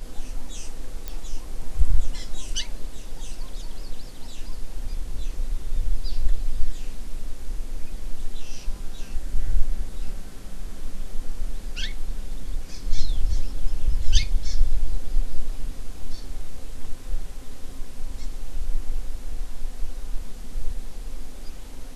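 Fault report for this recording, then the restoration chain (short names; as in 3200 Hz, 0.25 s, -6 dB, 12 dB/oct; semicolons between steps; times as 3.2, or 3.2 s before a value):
1.08 pop -16 dBFS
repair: de-click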